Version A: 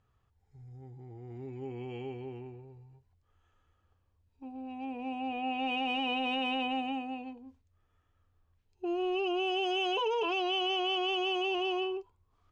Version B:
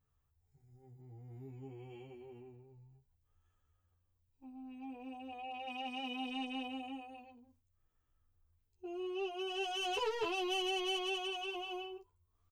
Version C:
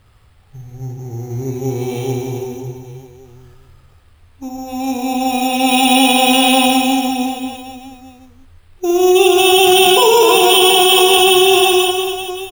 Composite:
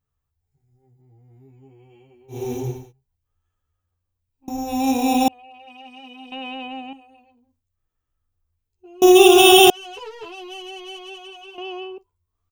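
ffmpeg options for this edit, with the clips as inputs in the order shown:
-filter_complex "[2:a]asplit=3[s0][s1][s2];[0:a]asplit=2[s3][s4];[1:a]asplit=6[s5][s6][s7][s8][s9][s10];[s5]atrim=end=2.52[s11];[s0]atrim=start=2.28:end=2.93[s12];[s6]atrim=start=2.69:end=4.482[s13];[s1]atrim=start=4.478:end=5.282[s14];[s7]atrim=start=5.278:end=6.322[s15];[s3]atrim=start=6.318:end=6.932[s16];[s8]atrim=start=6.928:end=9.022[s17];[s2]atrim=start=9.018:end=9.702[s18];[s9]atrim=start=9.698:end=11.582[s19];[s4]atrim=start=11.578:end=11.982[s20];[s10]atrim=start=11.978[s21];[s11][s12]acrossfade=d=0.24:c1=tri:c2=tri[s22];[s22][s13]acrossfade=d=0.24:c1=tri:c2=tri[s23];[s23][s14]acrossfade=d=0.004:c1=hsin:c2=hsin[s24];[s24][s15]acrossfade=d=0.004:c1=hsin:c2=hsin[s25];[s25][s16]acrossfade=d=0.004:c1=hsin:c2=hsin[s26];[s26][s17]acrossfade=d=0.004:c1=hsin:c2=hsin[s27];[s27][s18]acrossfade=d=0.004:c1=hsin:c2=hsin[s28];[s28][s19]acrossfade=d=0.004:c1=hsin:c2=hsin[s29];[s29][s20]acrossfade=d=0.004:c1=hsin:c2=hsin[s30];[s30][s21]acrossfade=d=0.004:c1=hsin:c2=hsin"

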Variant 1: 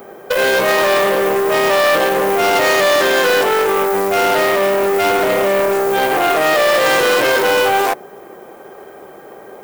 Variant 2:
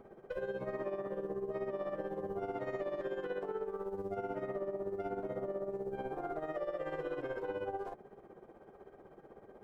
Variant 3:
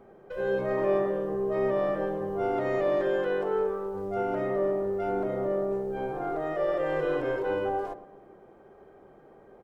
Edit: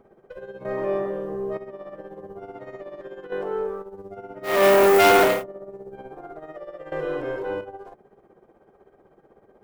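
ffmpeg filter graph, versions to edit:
-filter_complex "[2:a]asplit=3[s0][s1][s2];[1:a]asplit=5[s3][s4][s5][s6][s7];[s3]atrim=end=0.652[s8];[s0]atrim=start=0.648:end=1.572[s9];[s4]atrim=start=1.568:end=3.322[s10];[s1]atrim=start=3.318:end=3.822[s11];[s5]atrim=start=3.818:end=4.67[s12];[0:a]atrim=start=4.43:end=5.44[s13];[s6]atrim=start=5.2:end=6.922[s14];[s2]atrim=start=6.918:end=7.612[s15];[s7]atrim=start=7.608[s16];[s8][s9]acrossfade=d=0.004:c1=hsin:c2=hsin[s17];[s17][s10]acrossfade=d=0.004:c1=hsin:c2=hsin[s18];[s18][s11]acrossfade=d=0.004:c1=hsin:c2=hsin[s19];[s19][s12]acrossfade=d=0.004:c1=hsin:c2=hsin[s20];[s20][s13]acrossfade=d=0.24:c1=tri:c2=tri[s21];[s21][s14]acrossfade=d=0.24:c1=tri:c2=tri[s22];[s22][s15]acrossfade=d=0.004:c1=hsin:c2=hsin[s23];[s23][s16]acrossfade=d=0.004:c1=hsin:c2=hsin"

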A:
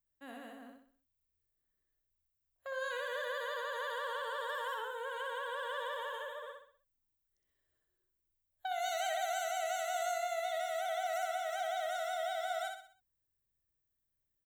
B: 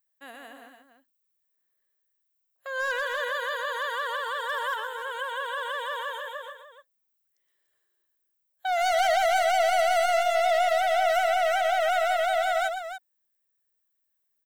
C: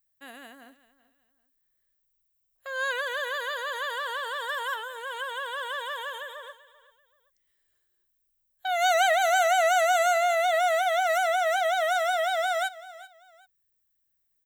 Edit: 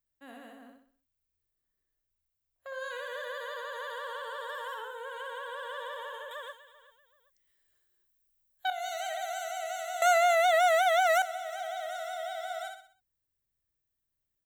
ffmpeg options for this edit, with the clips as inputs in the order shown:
-filter_complex "[2:a]asplit=2[s0][s1];[0:a]asplit=3[s2][s3][s4];[s2]atrim=end=6.312[s5];[s0]atrim=start=6.308:end=8.702[s6];[s3]atrim=start=8.698:end=10.022[s7];[s1]atrim=start=10.018:end=11.222[s8];[s4]atrim=start=11.218[s9];[s5][s6]acrossfade=d=0.004:c1=hsin:c2=hsin[s10];[s10][s7]acrossfade=d=0.004:c1=hsin:c2=hsin[s11];[s11][s8]acrossfade=d=0.004:c1=hsin:c2=hsin[s12];[s12][s9]acrossfade=d=0.004:c1=hsin:c2=hsin"

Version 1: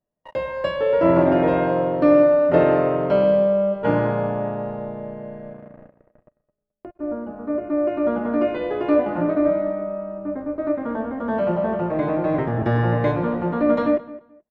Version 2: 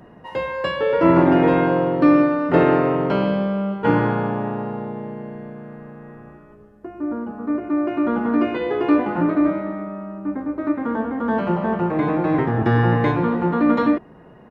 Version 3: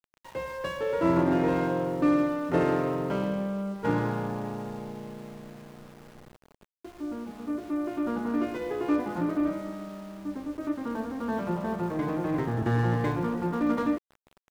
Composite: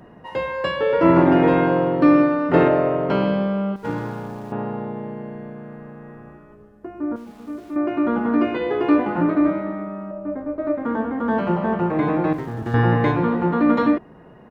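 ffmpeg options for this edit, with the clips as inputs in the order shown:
-filter_complex "[0:a]asplit=2[s0][s1];[2:a]asplit=3[s2][s3][s4];[1:a]asplit=6[s5][s6][s7][s8][s9][s10];[s5]atrim=end=2.682[s11];[s0]atrim=start=2.678:end=3.092[s12];[s6]atrim=start=3.088:end=3.762[s13];[s2]atrim=start=3.758:end=4.522[s14];[s7]atrim=start=4.518:end=7.162[s15];[s3]atrim=start=7.158:end=7.762[s16];[s8]atrim=start=7.758:end=10.112[s17];[s1]atrim=start=10.108:end=10.852[s18];[s9]atrim=start=10.848:end=12.332[s19];[s4]atrim=start=12.328:end=12.742[s20];[s10]atrim=start=12.738[s21];[s11][s12]acrossfade=d=0.004:c1=hsin:c2=hsin[s22];[s22][s13]acrossfade=d=0.004:c1=hsin:c2=hsin[s23];[s23][s14]acrossfade=d=0.004:c1=hsin:c2=hsin[s24];[s24][s15]acrossfade=d=0.004:c1=hsin:c2=hsin[s25];[s25][s16]acrossfade=d=0.004:c1=hsin:c2=hsin[s26];[s26][s17]acrossfade=d=0.004:c1=hsin:c2=hsin[s27];[s27][s18]acrossfade=d=0.004:c1=hsin:c2=hsin[s28];[s28][s19]acrossfade=d=0.004:c1=hsin:c2=hsin[s29];[s29][s20]acrossfade=d=0.004:c1=hsin:c2=hsin[s30];[s30][s21]acrossfade=d=0.004:c1=hsin:c2=hsin"

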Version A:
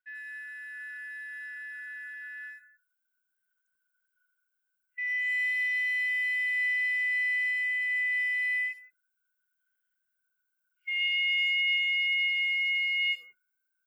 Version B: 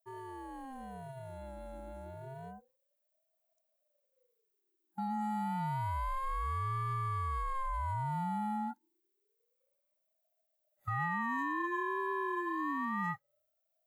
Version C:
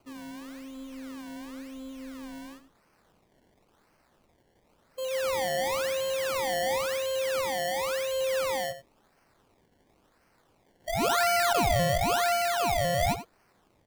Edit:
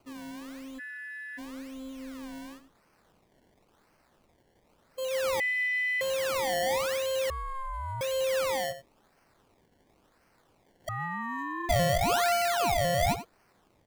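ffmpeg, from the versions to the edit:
-filter_complex "[0:a]asplit=2[s0][s1];[1:a]asplit=2[s2][s3];[2:a]asplit=5[s4][s5][s6][s7][s8];[s4]atrim=end=0.8[s9];[s0]atrim=start=0.78:end=1.39[s10];[s5]atrim=start=1.37:end=5.402[s11];[s1]atrim=start=5.398:end=6.012[s12];[s6]atrim=start=6.008:end=7.302[s13];[s2]atrim=start=7.298:end=8.012[s14];[s7]atrim=start=8.008:end=10.892[s15];[s3]atrim=start=10.888:end=11.692[s16];[s8]atrim=start=11.688[s17];[s9][s10]acrossfade=d=0.02:c1=tri:c2=tri[s18];[s18][s11]acrossfade=d=0.02:c1=tri:c2=tri[s19];[s19][s12]acrossfade=d=0.004:c1=hsin:c2=hsin[s20];[s20][s13]acrossfade=d=0.004:c1=hsin:c2=hsin[s21];[s21][s14]acrossfade=d=0.004:c1=hsin:c2=hsin[s22];[s22][s15]acrossfade=d=0.004:c1=hsin:c2=hsin[s23];[s23][s16]acrossfade=d=0.004:c1=hsin:c2=hsin[s24];[s24][s17]acrossfade=d=0.004:c1=hsin:c2=hsin"

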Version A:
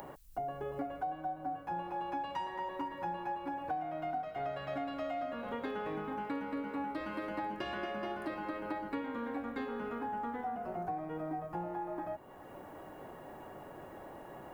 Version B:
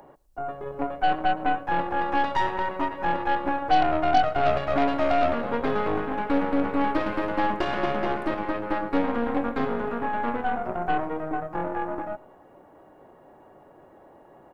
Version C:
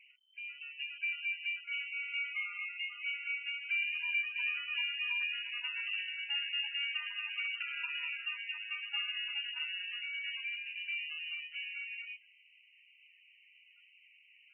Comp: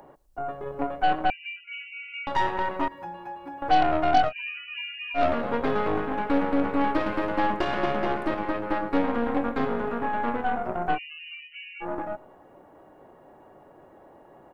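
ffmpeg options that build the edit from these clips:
-filter_complex "[2:a]asplit=3[s0][s1][s2];[1:a]asplit=5[s3][s4][s5][s6][s7];[s3]atrim=end=1.302[s8];[s0]atrim=start=1.298:end=2.272[s9];[s4]atrim=start=2.268:end=2.882[s10];[0:a]atrim=start=2.878:end=3.622[s11];[s5]atrim=start=3.618:end=4.33[s12];[s1]atrim=start=4.27:end=5.2[s13];[s6]atrim=start=5.14:end=10.99[s14];[s2]atrim=start=10.93:end=11.86[s15];[s7]atrim=start=11.8[s16];[s8][s9]acrossfade=d=0.004:c1=hsin:c2=hsin[s17];[s17][s10]acrossfade=d=0.004:c1=hsin:c2=hsin[s18];[s18][s11]acrossfade=d=0.004:c1=hsin:c2=hsin[s19];[s19][s12]acrossfade=d=0.004:c1=hsin:c2=hsin[s20];[s20][s13]acrossfade=d=0.06:c1=tri:c2=tri[s21];[s21][s14]acrossfade=d=0.06:c1=tri:c2=tri[s22];[s22][s15]acrossfade=d=0.06:c1=tri:c2=tri[s23];[s23][s16]acrossfade=d=0.06:c1=tri:c2=tri"

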